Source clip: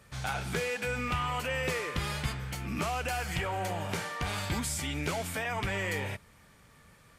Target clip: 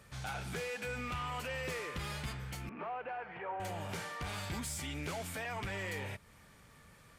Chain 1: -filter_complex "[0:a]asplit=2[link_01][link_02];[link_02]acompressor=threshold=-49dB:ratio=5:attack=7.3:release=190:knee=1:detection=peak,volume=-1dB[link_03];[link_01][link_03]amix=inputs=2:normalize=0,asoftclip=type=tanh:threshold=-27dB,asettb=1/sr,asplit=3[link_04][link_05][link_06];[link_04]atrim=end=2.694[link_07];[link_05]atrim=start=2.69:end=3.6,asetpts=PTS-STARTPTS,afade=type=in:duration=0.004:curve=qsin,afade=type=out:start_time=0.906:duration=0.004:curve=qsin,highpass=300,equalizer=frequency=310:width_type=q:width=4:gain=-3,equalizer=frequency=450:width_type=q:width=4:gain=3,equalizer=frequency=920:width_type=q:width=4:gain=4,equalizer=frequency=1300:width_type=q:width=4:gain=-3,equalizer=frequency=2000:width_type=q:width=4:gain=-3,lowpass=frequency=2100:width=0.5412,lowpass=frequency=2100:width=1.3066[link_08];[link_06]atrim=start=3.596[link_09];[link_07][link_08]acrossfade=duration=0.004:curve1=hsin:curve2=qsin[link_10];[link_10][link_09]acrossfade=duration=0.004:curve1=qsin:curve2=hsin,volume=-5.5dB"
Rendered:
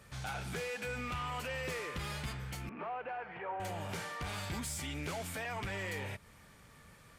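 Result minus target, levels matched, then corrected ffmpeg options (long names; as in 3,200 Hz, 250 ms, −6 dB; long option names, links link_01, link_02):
downward compressor: peak gain reduction −7 dB
-filter_complex "[0:a]asplit=2[link_01][link_02];[link_02]acompressor=threshold=-57.5dB:ratio=5:attack=7.3:release=190:knee=1:detection=peak,volume=-1dB[link_03];[link_01][link_03]amix=inputs=2:normalize=0,asoftclip=type=tanh:threshold=-27dB,asettb=1/sr,asplit=3[link_04][link_05][link_06];[link_04]atrim=end=2.694[link_07];[link_05]atrim=start=2.69:end=3.6,asetpts=PTS-STARTPTS,afade=type=in:duration=0.004:curve=qsin,afade=type=out:start_time=0.906:duration=0.004:curve=qsin,highpass=300,equalizer=frequency=310:width_type=q:width=4:gain=-3,equalizer=frequency=450:width_type=q:width=4:gain=3,equalizer=frequency=920:width_type=q:width=4:gain=4,equalizer=frequency=1300:width_type=q:width=4:gain=-3,equalizer=frequency=2000:width_type=q:width=4:gain=-3,lowpass=frequency=2100:width=0.5412,lowpass=frequency=2100:width=1.3066[link_08];[link_06]atrim=start=3.596[link_09];[link_07][link_08]acrossfade=duration=0.004:curve1=hsin:curve2=qsin[link_10];[link_10][link_09]acrossfade=duration=0.004:curve1=qsin:curve2=hsin,volume=-5.5dB"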